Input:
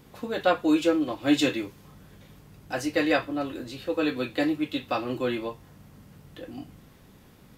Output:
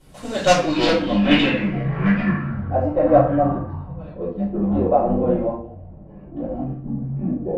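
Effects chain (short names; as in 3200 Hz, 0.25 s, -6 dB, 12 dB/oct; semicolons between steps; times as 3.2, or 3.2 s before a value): 3.57–4.69 differentiator; in parallel at -9.5 dB: companded quantiser 2-bit; on the sum: low-pass sweep 10000 Hz -> 710 Hz, 0.06–2.6; echoes that change speed 97 ms, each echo -7 st, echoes 3, each echo -6 dB; shoebox room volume 36 m³, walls mixed, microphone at 2.5 m; gain -10.5 dB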